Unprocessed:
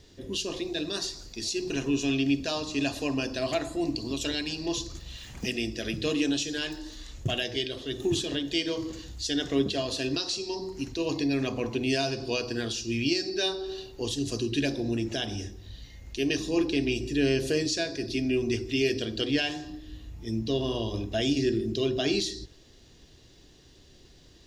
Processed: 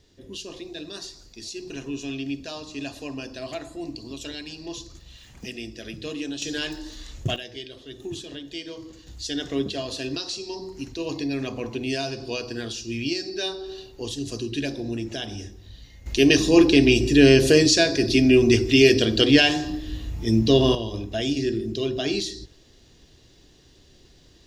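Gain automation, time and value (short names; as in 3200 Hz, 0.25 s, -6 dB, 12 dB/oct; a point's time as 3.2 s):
-5 dB
from 6.42 s +3 dB
from 7.36 s -7 dB
from 9.07 s -0.5 dB
from 16.06 s +11 dB
from 20.75 s +1 dB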